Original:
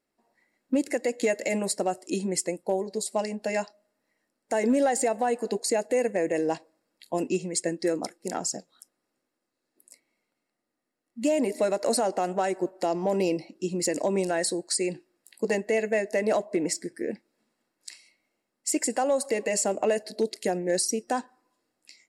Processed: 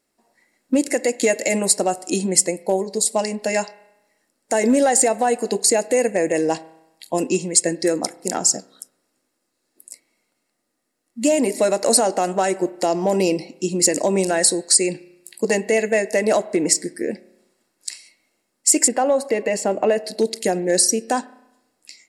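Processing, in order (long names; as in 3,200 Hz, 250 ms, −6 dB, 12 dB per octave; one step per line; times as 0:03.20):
parametric band 8,500 Hz +7.5 dB 1.7 octaves, from 0:18.88 −9.5 dB, from 0:20.04 +5 dB
convolution reverb RT60 0.90 s, pre-delay 31 ms, DRR 17.5 dB
level +6.5 dB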